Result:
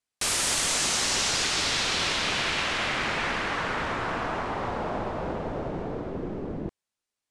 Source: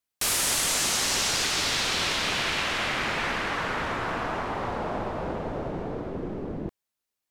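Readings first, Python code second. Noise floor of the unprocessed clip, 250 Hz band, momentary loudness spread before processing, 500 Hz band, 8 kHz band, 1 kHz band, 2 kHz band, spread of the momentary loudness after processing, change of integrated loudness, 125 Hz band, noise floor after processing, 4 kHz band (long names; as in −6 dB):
below −85 dBFS, 0.0 dB, 12 LU, 0.0 dB, −0.5 dB, 0.0 dB, 0.0 dB, 11 LU, 0.0 dB, 0.0 dB, below −85 dBFS, 0.0 dB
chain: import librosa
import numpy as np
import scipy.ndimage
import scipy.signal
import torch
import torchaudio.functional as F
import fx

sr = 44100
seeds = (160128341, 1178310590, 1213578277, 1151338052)

y = scipy.signal.sosfilt(scipy.signal.butter(4, 10000.0, 'lowpass', fs=sr, output='sos'), x)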